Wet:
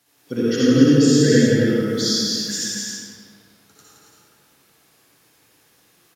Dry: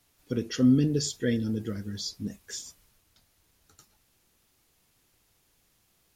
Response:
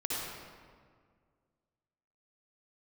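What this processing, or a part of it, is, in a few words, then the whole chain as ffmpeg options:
stadium PA: -filter_complex "[0:a]asettb=1/sr,asplit=3[s0][s1][s2];[s0]atrim=end=1.884[s3];[s1]atrim=start=1.88:end=2.58,asetpts=PTS-STARTPTS,afade=t=in:d=0.004:c=qsin,afade=t=out:st=0.696:d=0.004:c=qsin,tiltshelf=f=1300:g=-7[s4];[s2]atrim=start=2.576[s5];[s3][s4]acrossfade=d=0.004:c1=hsin:c2=qsin[s6];[s6][s5]acrossfade=d=0.004:c1=qsin:c2=hsin,highpass=160,equalizer=f=1600:t=o:w=0.23:g=5,aecho=1:1:169.1|274.1:0.562|0.501[s7];[1:a]atrim=start_sample=2205[s8];[s7][s8]afir=irnorm=-1:irlink=0,volume=1.88"

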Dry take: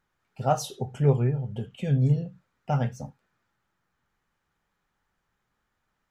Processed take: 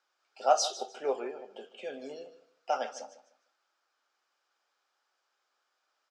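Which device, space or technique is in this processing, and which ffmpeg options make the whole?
phone speaker on a table: -filter_complex "[0:a]highpass=f=210:w=0.5412,highpass=f=210:w=1.3066,asettb=1/sr,asplit=3[s0][s1][s2];[s0]atrim=end=0.814[s3];[s1]atrim=start=0.81:end=2.16,asetpts=PTS-STARTPTS,afade=t=in:d=0.004:c=qsin,afade=t=out:st=1.346:d=0.004:c=qsin,acrossover=split=2600[s4][s5];[s5]acompressor=threshold=0.001:ratio=4:attack=1:release=60[s6];[s4][s6]amix=inputs=2:normalize=0[s7];[s2]atrim=start=2.156[s8];[s3][s7]acrossfade=d=0.004:c1=hsin:c2=qsin[s9];[s9][s8]acrossfade=d=0.004:c1=qsin:c2=hsin,highpass=f=430:w=0.5412,highpass=f=430:w=1.3066,equalizer=f=440:t=q:w=4:g=-6,equalizer=f=940:t=q:w=4:g=-5,equalizer=f=1900:t=q:w=4:g=-8,equalizer=f=5000:t=q:w=4:g=8,lowpass=f=7800:w=0.5412,lowpass=f=7800:w=1.3066,aecho=1:1:152|304|456:0.178|0.0445|0.0111,bandreject=f=96.78:t=h:w=4,bandreject=f=193.56:t=h:w=4,bandreject=f=290.34:t=h:w=4,bandreject=f=387.12:t=h:w=4,bandreject=f=483.9:t=h:w=4,bandreject=f=580.68:t=h:w=4,bandreject=f=677.46:t=h:w=4,volume=1.33"

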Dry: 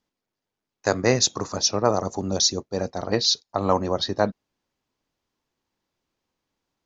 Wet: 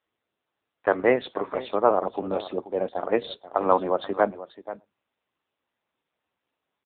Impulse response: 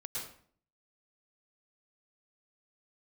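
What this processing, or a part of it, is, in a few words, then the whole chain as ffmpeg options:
satellite phone: -filter_complex "[0:a]asplit=3[s0][s1][s2];[s0]afade=t=out:st=1.09:d=0.02[s3];[s1]lowpass=f=5300:w=0.5412,lowpass=f=5300:w=1.3066,afade=t=in:st=1.09:d=0.02,afade=t=out:st=3.2:d=0.02[s4];[s2]afade=t=in:st=3.2:d=0.02[s5];[s3][s4][s5]amix=inputs=3:normalize=0,highpass=40,highpass=320,lowpass=3300,bandreject=f=50:t=h:w=6,bandreject=f=100:t=h:w=6,asplit=2[s6][s7];[s7]adelay=110.8,volume=0.0355,highshelf=f=4000:g=-2.49[s8];[s6][s8]amix=inputs=2:normalize=0,aecho=1:1:483:0.188,volume=1.33" -ar 8000 -c:a libopencore_amrnb -b:a 6700

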